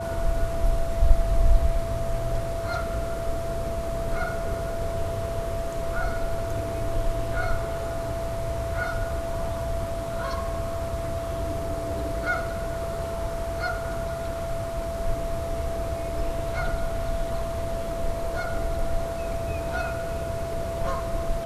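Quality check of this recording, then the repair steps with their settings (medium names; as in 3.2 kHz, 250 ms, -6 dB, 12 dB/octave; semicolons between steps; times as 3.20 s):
whine 670 Hz -30 dBFS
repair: band-stop 670 Hz, Q 30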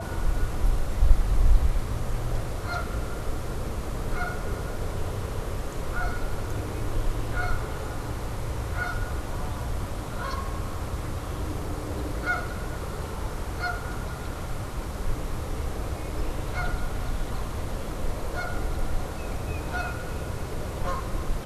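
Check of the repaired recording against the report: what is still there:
nothing left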